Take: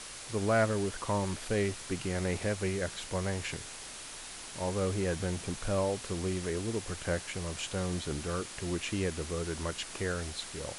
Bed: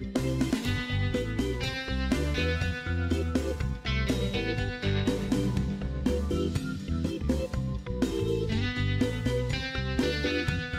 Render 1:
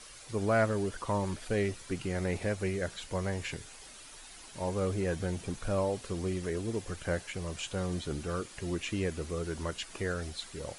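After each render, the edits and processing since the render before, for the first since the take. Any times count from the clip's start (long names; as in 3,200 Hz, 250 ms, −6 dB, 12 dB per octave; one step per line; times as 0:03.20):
broadband denoise 9 dB, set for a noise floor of −45 dBFS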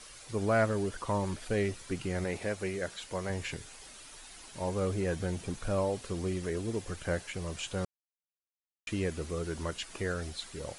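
0:02.24–0:03.30: low-shelf EQ 150 Hz −9.5 dB
0:07.85–0:08.87: silence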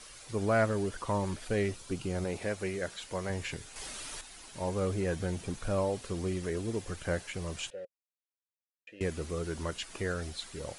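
0:01.76–0:02.38: parametric band 1,900 Hz −9 dB 0.51 octaves
0:03.76–0:04.21: clip gain +8 dB
0:07.70–0:09.01: formant filter e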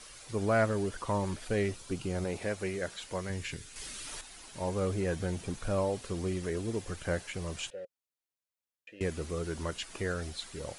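0:03.21–0:04.07: parametric band 740 Hz −9 dB 1.3 octaves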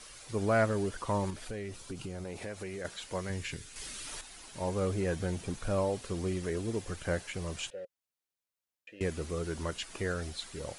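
0:01.30–0:02.85: downward compressor 5 to 1, threshold −36 dBFS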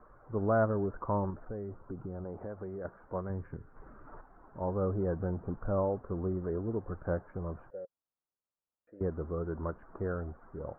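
Butterworth low-pass 1,400 Hz 48 dB per octave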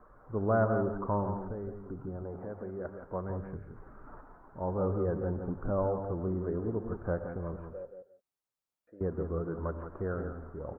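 single-tap delay 173 ms −8 dB
reverb whose tail is shaped and stops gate 190 ms rising, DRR 9.5 dB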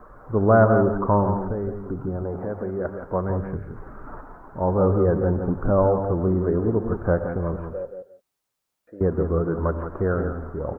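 level +11.5 dB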